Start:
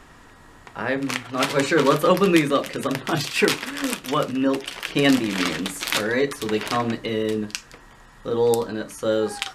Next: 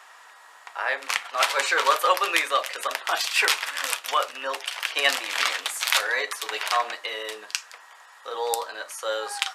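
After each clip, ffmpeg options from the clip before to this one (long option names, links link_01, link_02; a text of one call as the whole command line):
ffmpeg -i in.wav -af "highpass=frequency=680:width=0.5412,highpass=frequency=680:width=1.3066,volume=2dB" out.wav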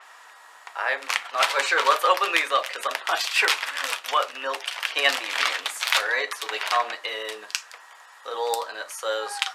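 ffmpeg -i in.wav -filter_complex "[0:a]acrossover=split=5200[link_01][link_02];[link_02]asoftclip=type=tanh:threshold=-14.5dB[link_03];[link_01][link_03]amix=inputs=2:normalize=0,adynamicequalizer=threshold=0.01:dfrequency=5500:dqfactor=0.7:tfrequency=5500:tqfactor=0.7:attack=5:release=100:ratio=0.375:range=2.5:mode=cutabove:tftype=highshelf,volume=1dB" out.wav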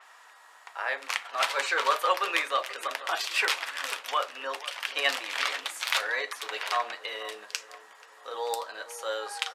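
ffmpeg -i in.wav -filter_complex "[0:a]asplit=2[link_01][link_02];[link_02]adelay=483,lowpass=frequency=1200:poles=1,volume=-14.5dB,asplit=2[link_03][link_04];[link_04]adelay=483,lowpass=frequency=1200:poles=1,volume=0.5,asplit=2[link_05][link_06];[link_06]adelay=483,lowpass=frequency=1200:poles=1,volume=0.5,asplit=2[link_07][link_08];[link_08]adelay=483,lowpass=frequency=1200:poles=1,volume=0.5,asplit=2[link_09][link_10];[link_10]adelay=483,lowpass=frequency=1200:poles=1,volume=0.5[link_11];[link_01][link_03][link_05][link_07][link_09][link_11]amix=inputs=6:normalize=0,volume=-5.5dB" out.wav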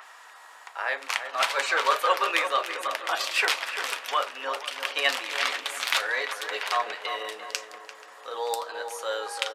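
ffmpeg -i in.wav -filter_complex "[0:a]acompressor=mode=upward:threshold=-45dB:ratio=2.5,asplit=2[link_01][link_02];[link_02]adelay=344,lowpass=frequency=1600:poles=1,volume=-7dB,asplit=2[link_03][link_04];[link_04]adelay=344,lowpass=frequency=1600:poles=1,volume=0.42,asplit=2[link_05][link_06];[link_06]adelay=344,lowpass=frequency=1600:poles=1,volume=0.42,asplit=2[link_07][link_08];[link_08]adelay=344,lowpass=frequency=1600:poles=1,volume=0.42,asplit=2[link_09][link_10];[link_10]adelay=344,lowpass=frequency=1600:poles=1,volume=0.42[link_11];[link_01][link_03][link_05][link_07][link_09][link_11]amix=inputs=6:normalize=0,volume=2dB" out.wav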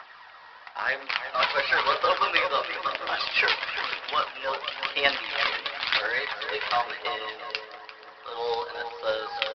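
ffmpeg -i in.wav -af "aphaser=in_gain=1:out_gain=1:delay=2.3:decay=0.39:speed=0.99:type=triangular,aresample=11025,acrusher=bits=3:mode=log:mix=0:aa=0.000001,aresample=44100" out.wav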